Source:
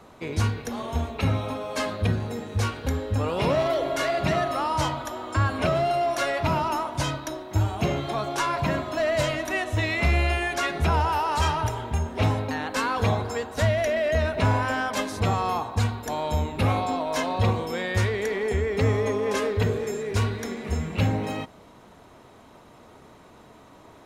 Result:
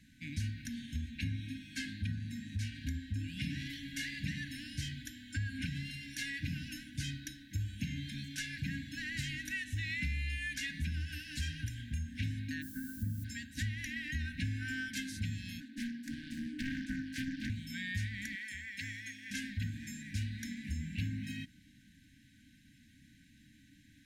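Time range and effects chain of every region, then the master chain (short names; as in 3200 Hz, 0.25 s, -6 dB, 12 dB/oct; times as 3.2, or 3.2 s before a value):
0.65–3.19 high shelf 11000 Hz -6.5 dB + upward compressor, threshold -29 dBFS + notches 60/120/180 Hz
12.61–13.23 steep low-pass 1300 Hz + added noise violet -44 dBFS
15.6–17.5 steep high-pass 220 Hz 96 dB/oct + tilt shelf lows +6.5 dB, about 1200 Hz + Doppler distortion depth 0.95 ms
18.35–19.31 HPF 100 Hz + resonant low shelf 350 Hz -14 dB, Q 1.5
whole clip: FFT band-reject 310–1500 Hz; compressor 3:1, threshold -27 dBFS; gain -7.5 dB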